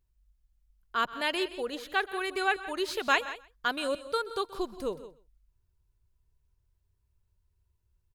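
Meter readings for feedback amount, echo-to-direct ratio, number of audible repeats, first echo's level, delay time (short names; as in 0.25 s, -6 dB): no steady repeat, -13.5 dB, 3, -18.5 dB, 0.127 s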